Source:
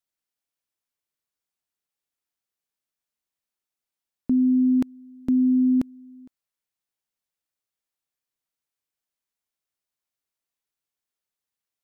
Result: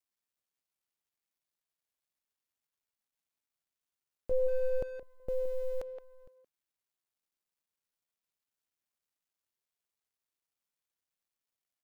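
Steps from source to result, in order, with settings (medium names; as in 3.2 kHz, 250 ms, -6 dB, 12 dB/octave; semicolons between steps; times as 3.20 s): companding laws mixed up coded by mu; 4.31–5.03 s: bass shelf 390 Hz +10 dB; peak limiter -11.5 dBFS, peak gain reduction 3.5 dB; ring modulator 260 Hz; speakerphone echo 170 ms, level -8 dB; trim -8.5 dB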